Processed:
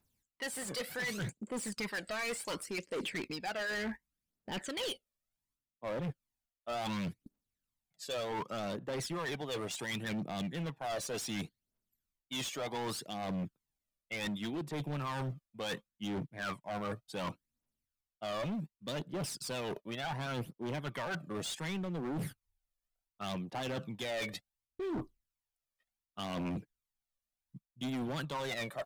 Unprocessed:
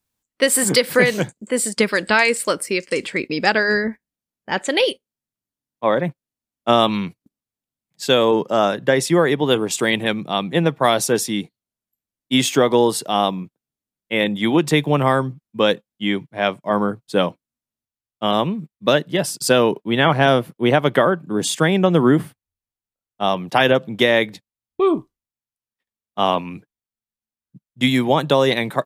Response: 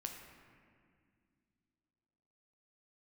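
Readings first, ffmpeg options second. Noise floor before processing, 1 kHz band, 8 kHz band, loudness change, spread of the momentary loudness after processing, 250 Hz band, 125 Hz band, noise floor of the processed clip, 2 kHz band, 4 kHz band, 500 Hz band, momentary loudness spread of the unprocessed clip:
under -85 dBFS, -20.5 dB, -18.5 dB, -20.0 dB, 6 LU, -19.0 dB, -16.0 dB, under -85 dBFS, -19.5 dB, -18.5 dB, -22.5 dB, 9 LU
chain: -filter_complex "[0:a]asubboost=boost=2.5:cutoff=56,aphaser=in_gain=1:out_gain=1:delay=1.8:decay=0.65:speed=0.68:type=triangular,areverse,acompressor=threshold=0.0562:ratio=16,areverse,volume=29.9,asoftclip=hard,volume=0.0335,acrossover=split=6100[s0][s1];[s1]acompressor=threshold=0.01:ratio=4:attack=1:release=60[s2];[s0][s2]amix=inputs=2:normalize=0,volume=0.596"

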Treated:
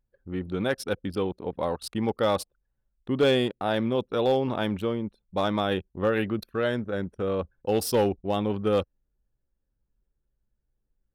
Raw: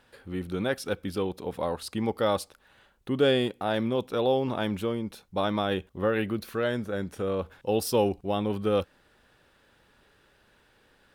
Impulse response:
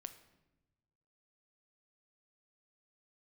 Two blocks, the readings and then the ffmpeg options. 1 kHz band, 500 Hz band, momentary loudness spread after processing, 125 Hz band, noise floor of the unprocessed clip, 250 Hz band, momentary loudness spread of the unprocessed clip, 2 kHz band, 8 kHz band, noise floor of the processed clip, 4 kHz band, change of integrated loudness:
+1.0 dB, +1.5 dB, 8 LU, +1.5 dB, -64 dBFS, +1.5 dB, 8 LU, +1.5 dB, +1.0 dB, -79 dBFS, +1.0 dB, +1.5 dB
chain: -af "anlmdn=0.631,volume=7.08,asoftclip=hard,volume=0.141,volume=1.19"

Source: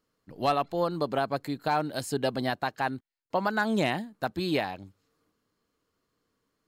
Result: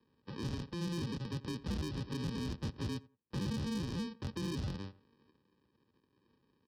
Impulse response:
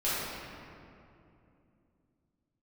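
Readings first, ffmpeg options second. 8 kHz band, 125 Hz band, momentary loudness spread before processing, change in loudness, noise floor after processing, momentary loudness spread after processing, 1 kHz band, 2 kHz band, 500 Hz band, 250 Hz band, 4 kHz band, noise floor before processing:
-6.5 dB, -0.5 dB, 6 LU, -10.0 dB, -77 dBFS, 6 LU, -22.0 dB, -18.0 dB, -17.0 dB, -6.0 dB, -8.5 dB, -79 dBFS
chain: -filter_complex "[0:a]acrossover=split=780[s0][s1];[s1]asoftclip=type=hard:threshold=0.0398[s2];[s0][s2]amix=inputs=2:normalize=0,alimiter=level_in=1.33:limit=0.0631:level=0:latency=1:release=32,volume=0.75,aresample=11025,acrusher=samples=16:mix=1:aa=0.000001,aresample=44100,asoftclip=type=tanh:threshold=0.0188,highpass=71,bandreject=f=2200:w=8,asplit=2[s3][s4];[s4]adelay=87,lowpass=f=1900:p=1,volume=0.0841,asplit=2[s5][s6];[s6]adelay=87,lowpass=f=1900:p=1,volume=0.17[s7];[s3][s5][s7]amix=inputs=3:normalize=0,acrossover=split=270|3000[s8][s9][s10];[s9]acompressor=threshold=0.00251:ratio=5[s11];[s8][s11][s10]amix=inputs=3:normalize=0,volume=1.78"

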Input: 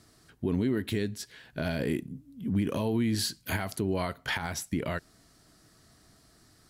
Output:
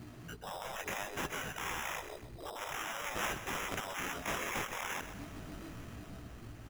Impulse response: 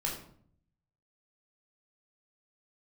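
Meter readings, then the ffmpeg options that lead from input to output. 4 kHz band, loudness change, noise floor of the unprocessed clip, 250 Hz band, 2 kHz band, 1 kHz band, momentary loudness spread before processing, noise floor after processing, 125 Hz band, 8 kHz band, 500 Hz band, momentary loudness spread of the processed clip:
-5.0 dB, -8.0 dB, -62 dBFS, -17.0 dB, -1.0 dB, +1.0 dB, 8 LU, -50 dBFS, -14.5 dB, -2.5 dB, -10.0 dB, 12 LU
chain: -filter_complex "[0:a]equalizer=f=370:t=o:w=2.6:g=3,asplit=2[s0][s1];[s1]alimiter=level_in=1.41:limit=0.0631:level=0:latency=1,volume=0.708,volume=0.75[s2];[s0][s2]amix=inputs=2:normalize=0,afftdn=nr=12:nf=-42,dynaudnorm=f=380:g=7:m=2.11,flanger=delay=16.5:depth=4:speed=0.48,aresample=16000,asoftclip=type=tanh:threshold=0.0596,aresample=44100,acompressor=threshold=0.0112:ratio=10,asubboost=boost=3.5:cutoff=84,afftfilt=real='re*lt(hypot(re,im),0.01)':imag='im*lt(hypot(re,im),0.01)':win_size=1024:overlap=0.75,acrusher=samples=10:mix=1:aa=0.000001,aecho=1:1:129|258|387|516:0.282|0.121|0.0521|0.0224,volume=5.96"

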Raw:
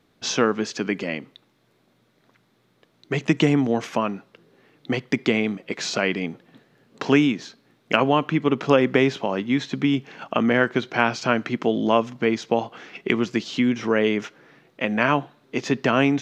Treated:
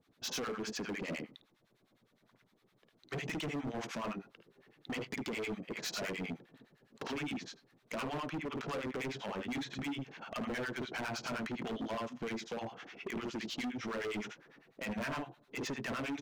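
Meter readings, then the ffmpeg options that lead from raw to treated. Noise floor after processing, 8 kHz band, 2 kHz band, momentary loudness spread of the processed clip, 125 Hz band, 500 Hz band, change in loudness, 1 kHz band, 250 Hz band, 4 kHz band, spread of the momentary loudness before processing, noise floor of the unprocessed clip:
-73 dBFS, no reading, -15.5 dB, 7 LU, -17.0 dB, -18.5 dB, -17.0 dB, -17.0 dB, -18.0 dB, -13.0 dB, 10 LU, -64 dBFS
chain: -filter_complex "[0:a]aecho=1:1:53|76:0.668|0.251,acrossover=split=860[s0][s1];[s0]aeval=exprs='val(0)*(1-1/2+1/2*cos(2*PI*9.8*n/s))':c=same[s2];[s1]aeval=exprs='val(0)*(1-1/2-1/2*cos(2*PI*9.8*n/s))':c=same[s3];[s2][s3]amix=inputs=2:normalize=0,acompressor=threshold=0.0708:ratio=8,volume=29.9,asoftclip=hard,volume=0.0335,volume=0.531"

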